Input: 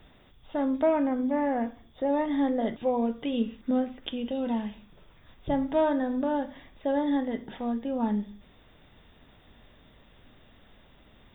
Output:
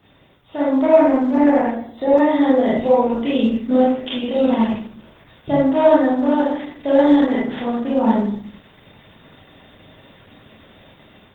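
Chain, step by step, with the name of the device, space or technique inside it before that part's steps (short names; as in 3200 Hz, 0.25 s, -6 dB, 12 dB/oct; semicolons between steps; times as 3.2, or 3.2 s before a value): far-field microphone of a smart speaker (reverb RT60 0.60 s, pre-delay 26 ms, DRR -6.5 dB; HPF 100 Hz 12 dB/oct; AGC gain up to 6 dB; Opus 16 kbps 48000 Hz)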